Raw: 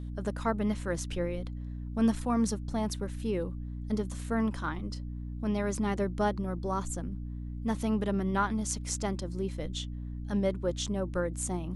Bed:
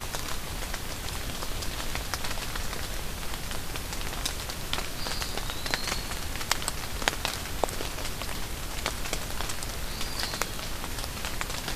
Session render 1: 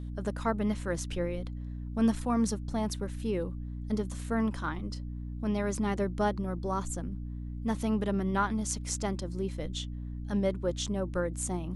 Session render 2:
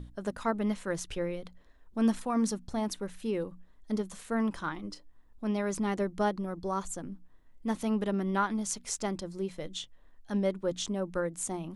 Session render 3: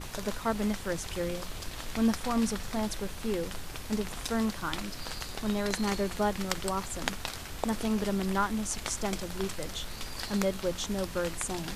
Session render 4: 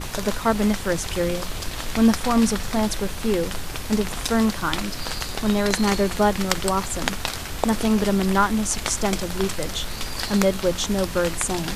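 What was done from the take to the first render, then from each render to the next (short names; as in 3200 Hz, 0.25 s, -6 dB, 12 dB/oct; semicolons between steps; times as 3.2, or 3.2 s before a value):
nothing audible
notches 60/120/180/240/300 Hz
add bed -6.5 dB
gain +9.5 dB; limiter -1 dBFS, peak gain reduction 2.5 dB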